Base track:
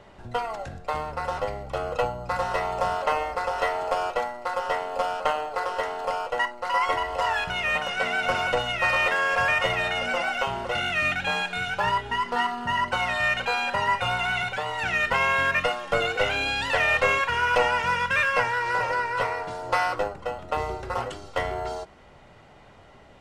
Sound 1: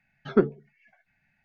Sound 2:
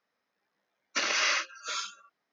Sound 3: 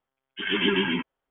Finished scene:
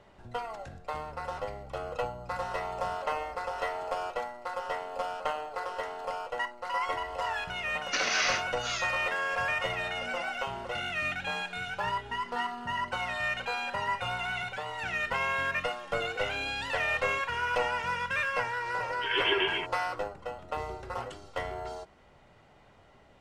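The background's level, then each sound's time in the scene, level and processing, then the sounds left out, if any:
base track -7.5 dB
6.97 s: add 2 -1.5 dB
18.64 s: add 3 -1 dB + Chebyshev band-stop 110–430 Hz
not used: 1

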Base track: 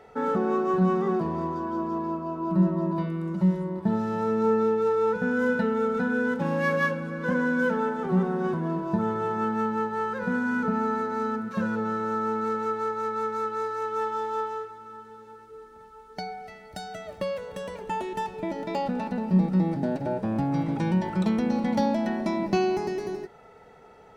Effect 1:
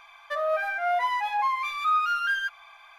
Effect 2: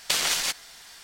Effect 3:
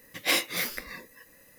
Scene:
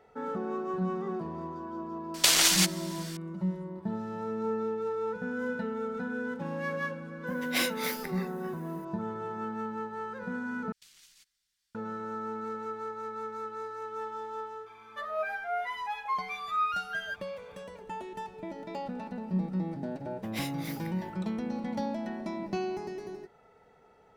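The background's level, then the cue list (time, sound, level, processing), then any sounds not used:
base track -9 dB
2.14 s: add 2 + treble shelf 4.1 kHz +4.5 dB
7.27 s: add 3 -5 dB
10.72 s: replace with 2 -17.5 dB + amplifier tone stack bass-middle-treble 6-0-2
14.66 s: add 1 -4.5 dB + endless flanger 7 ms +2.7 Hz
20.08 s: add 3 -14 dB + expander -44 dBFS

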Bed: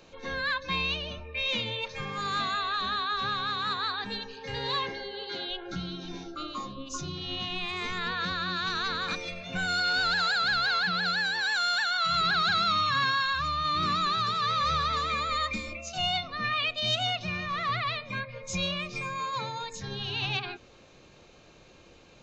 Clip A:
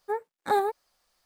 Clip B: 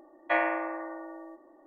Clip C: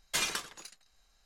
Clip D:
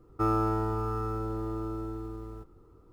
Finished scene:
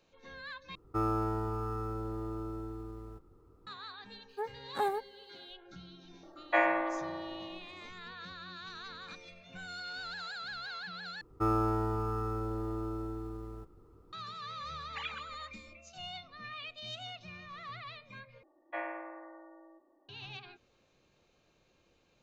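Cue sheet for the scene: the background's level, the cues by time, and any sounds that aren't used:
bed -15.5 dB
0.75 s: replace with D -4.5 dB
4.29 s: add A -7.5 dB
6.23 s: add B -0.5 dB + feedback echo behind a high-pass 107 ms, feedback 64%, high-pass 3.1 kHz, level -12 dB
11.21 s: replace with D -2.5 dB
14.82 s: add C -10.5 dB + formants replaced by sine waves
18.43 s: replace with B -12 dB + Bessel low-pass 3.2 kHz

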